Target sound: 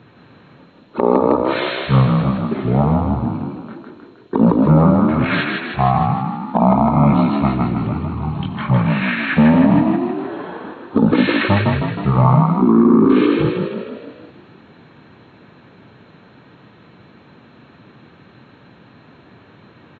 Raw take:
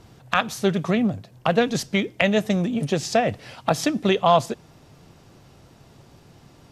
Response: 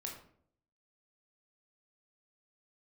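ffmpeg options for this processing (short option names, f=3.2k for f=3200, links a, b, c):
-filter_complex "[0:a]highpass=f=340:w=0.5412,highpass=f=340:w=1.3066,bandreject=f=5.9k:w=8.9,asetrate=14818,aresample=44100,asplit=9[a][b][c][d][e][f][g][h][i];[b]adelay=157,afreqshift=33,volume=-3.5dB[j];[c]adelay=314,afreqshift=66,volume=-8.4dB[k];[d]adelay=471,afreqshift=99,volume=-13.3dB[l];[e]adelay=628,afreqshift=132,volume=-18.1dB[m];[f]adelay=785,afreqshift=165,volume=-23dB[n];[g]adelay=942,afreqshift=198,volume=-27.9dB[o];[h]adelay=1099,afreqshift=231,volume=-32.8dB[p];[i]adelay=1256,afreqshift=264,volume=-37.7dB[q];[a][j][k][l][m][n][o][p][q]amix=inputs=9:normalize=0,alimiter=level_in=11dB:limit=-1dB:release=50:level=0:latency=1,volume=-2.5dB"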